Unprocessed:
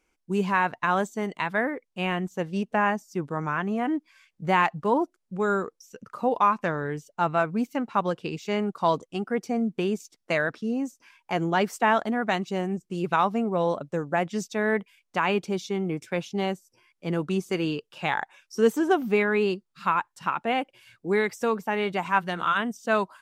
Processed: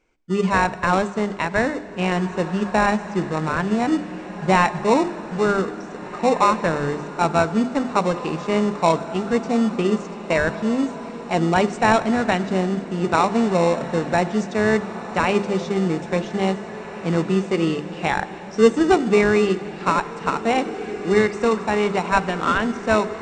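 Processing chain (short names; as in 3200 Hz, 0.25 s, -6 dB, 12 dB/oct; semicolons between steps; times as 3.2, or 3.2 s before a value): high shelf 5000 Hz -10 dB; notches 50/100/150/200/250/300/350/400 Hz; in parallel at -7 dB: sample-rate reducer 1600 Hz, jitter 0%; on the sum: brick-wall FIR low-pass 8800 Hz; diffused feedback echo 1.899 s, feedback 44%, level -13.5 dB; on a send at -15 dB: reverb RT60 2.9 s, pre-delay 17 ms; on the sum: gain +4.5 dB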